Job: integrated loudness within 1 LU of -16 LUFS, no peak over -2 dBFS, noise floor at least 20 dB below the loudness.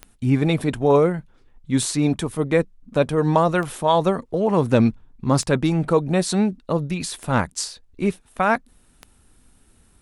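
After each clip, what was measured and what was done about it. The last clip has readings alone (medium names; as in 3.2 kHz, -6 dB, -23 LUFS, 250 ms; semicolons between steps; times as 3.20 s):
clicks found 6; loudness -21.5 LUFS; peak level -3.0 dBFS; loudness target -16.0 LUFS
-> de-click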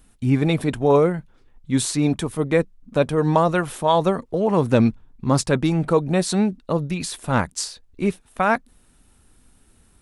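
clicks found 0; loudness -21.5 LUFS; peak level -3.0 dBFS; loudness target -16.0 LUFS
-> trim +5.5 dB; peak limiter -2 dBFS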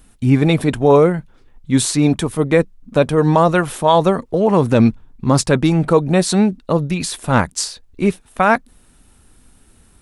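loudness -16.0 LUFS; peak level -2.0 dBFS; noise floor -51 dBFS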